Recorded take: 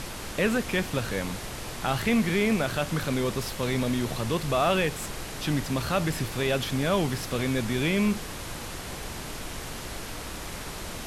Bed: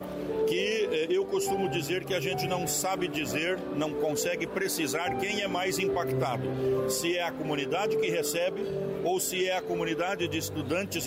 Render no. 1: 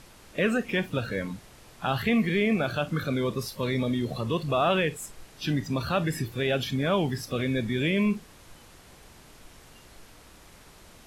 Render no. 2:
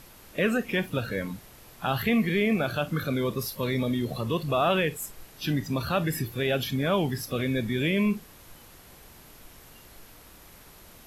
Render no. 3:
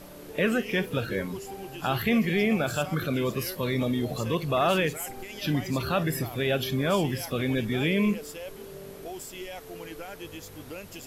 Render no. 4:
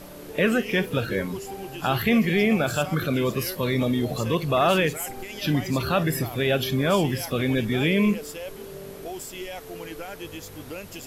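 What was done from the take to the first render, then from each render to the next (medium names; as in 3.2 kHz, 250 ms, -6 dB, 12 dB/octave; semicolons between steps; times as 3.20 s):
noise print and reduce 15 dB
peaking EQ 12 kHz +12.5 dB 0.22 oct
add bed -11 dB
trim +3.5 dB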